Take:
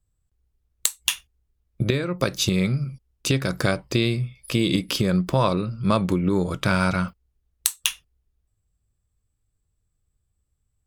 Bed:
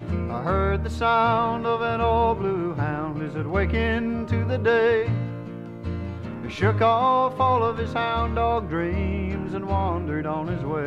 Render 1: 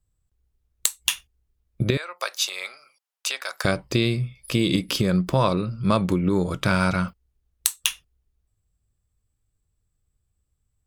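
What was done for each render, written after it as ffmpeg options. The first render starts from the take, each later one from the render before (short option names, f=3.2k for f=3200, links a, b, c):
-filter_complex "[0:a]asettb=1/sr,asplit=3[a][b][c];[a]atrim=end=1.974[d];[b]atrim=start=1.97:end=3.65,asetpts=PTS-STARTPTS,afade=t=in:d=0.004:c=qsin,afade=t=out:st=1.676:d=0.004:c=qsin,highpass=f=710:w=0.5412,highpass=f=710:w=1.3066[e];[c]atrim=start=3.646[f];[d][e]acrossfade=d=0.004:c1=hsin:c2=qsin[g];[g][f]acrossfade=d=0.004:c1=qsin:c2=hsin"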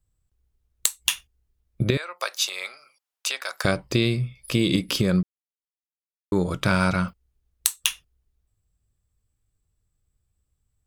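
-filter_complex "[0:a]asplit=3[a][b][c];[a]atrim=end=5.23,asetpts=PTS-STARTPTS,afade=t=out:st=5.226:d=0.004:c=hsin[d];[b]atrim=start=5.23:end=6.32,asetpts=PTS-STARTPTS,volume=0[e];[c]atrim=start=6.32,asetpts=PTS-STARTPTS,afade=t=in:d=0.004:c=hsin[f];[d][e][f]concat=n=3:v=0:a=1"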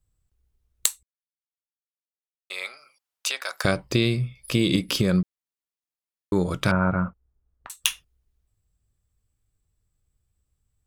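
-filter_complex "[0:a]asettb=1/sr,asplit=3[a][b][c];[a]atrim=end=6.714[d];[b]atrim=start=6.71:end=7.7,asetpts=PTS-STARTPTS,afade=t=in:d=0.004:c=qsin,afade=t=out:st=0.986:d=0.004:c=qsin,lowpass=f=1.5k:w=0.5412,lowpass=f=1.5k:w=1.3066[e];[c]atrim=start=7.696[f];[d][e]acrossfade=d=0.004:c1=hsin:c2=qsin[g];[g][f]acrossfade=d=0.004:c1=qsin:c2=hsin,asplit=3[h][i][j];[h]atrim=end=1.03,asetpts=PTS-STARTPTS,afade=t=out:st=1.026:d=0.004:c=hsin[k];[i]atrim=start=1.03:end=2.5,asetpts=PTS-STARTPTS,volume=0[l];[j]atrim=start=2.5,asetpts=PTS-STARTPTS,afade=t=in:d=0.004:c=hsin[m];[k][l][m]concat=n=3:v=0:a=1"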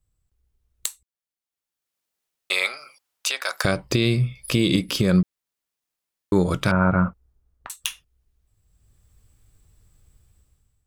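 -af "dynaudnorm=f=280:g=5:m=16dB,alimiter=limit=-8.5dB:level=0:latency=1:release=347"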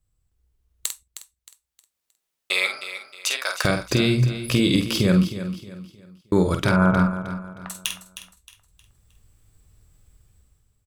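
-filter_complex "[0:a]asplit=2[a][b];[b]adelay=48,volume=-7dB[c];[a][c]amix=inputs=2:normalize=0,aecho=1:1:312|624|936|1248:0.251|0.0879|0.0308|0.0108"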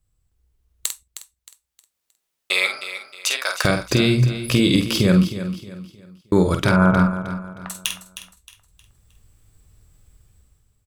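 -af "volume=2.5dB"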